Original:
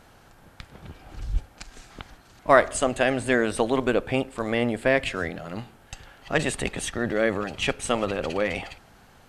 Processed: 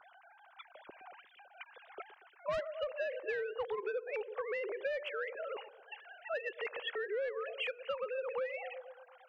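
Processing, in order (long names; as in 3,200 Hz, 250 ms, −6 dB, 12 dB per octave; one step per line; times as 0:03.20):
three sine waves on the formant tracks
delay with a low-pass on its return 117 ms, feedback 52%, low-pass 560 Hz, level −14 dB
soft clipping −16 dBFS, distortion −11 dB
downward compressor 6 to 1, threshold −37 dBFS, peak gain reduction 17 dB
level +1 dB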